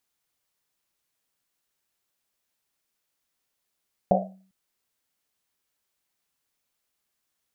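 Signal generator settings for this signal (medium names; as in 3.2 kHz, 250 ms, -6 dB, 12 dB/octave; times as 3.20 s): Risset drum length 0.40 s, pitch 190 Hz, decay 0.52 s, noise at 640 Hz, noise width 220 Hz, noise 70%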